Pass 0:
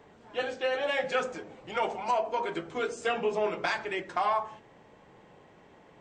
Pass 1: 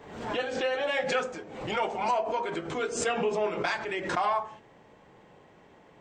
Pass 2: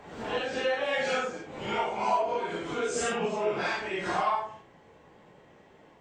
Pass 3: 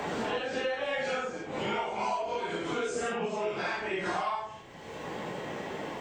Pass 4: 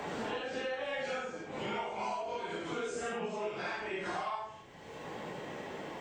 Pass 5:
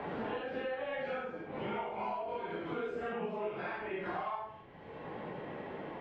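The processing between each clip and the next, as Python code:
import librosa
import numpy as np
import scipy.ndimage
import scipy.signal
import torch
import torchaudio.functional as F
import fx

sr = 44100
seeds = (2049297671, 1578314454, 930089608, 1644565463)

y1 = fx.pre_swell(x, sr, db_per_s=62.0)
y2 = fx.phase_scramble(y1, sr, seeds[0], window_ms=200)
y3 = fx.band_squash(y2, sr, depth_pct=100)
y3 = F.gain(torch.from_numpy(y3), -3.0).numpy()
y4 = y3 + 10.0 ** (-10.0 / 20.0) * np.pad(y3, (int(73 * sr / 1000.0), 0))[:len(y3)]
y4 = F.gain(torch.from_numpy(y4), -5.5).numpy()
y5 = fx.air_absorb(y4, sr, metres=430.0)
y5 = F.gain(torch.from_numpy(y5), 1.0).numpy()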